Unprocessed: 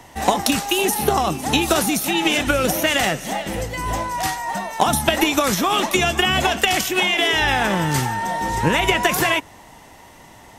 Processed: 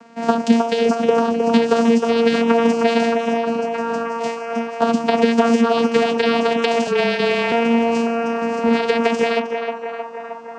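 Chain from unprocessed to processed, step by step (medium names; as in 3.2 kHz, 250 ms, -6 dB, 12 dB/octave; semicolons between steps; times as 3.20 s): vocoder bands 8, saw 231 Hz; band-passed feedback delay 312 ms, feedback 83%, band-pass 970 Hz, level -3 dB; 6.87–7.52 s: frequency shift -24 Hz; trim +1.5 dB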